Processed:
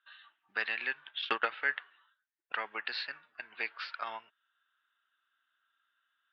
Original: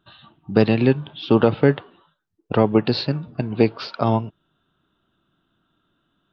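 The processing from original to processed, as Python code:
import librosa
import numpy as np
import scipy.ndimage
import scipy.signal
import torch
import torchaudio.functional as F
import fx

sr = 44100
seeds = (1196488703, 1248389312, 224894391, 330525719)

y = fx.transient(x, sr, attack_db=12, sustain_db=-11, at=(1.07, 1.49))
y = fx.ladder_bandpass(y, sr, hz=2000.0, resonance_pct=55)
y = y * librosa.db_to_amplitude(5.0)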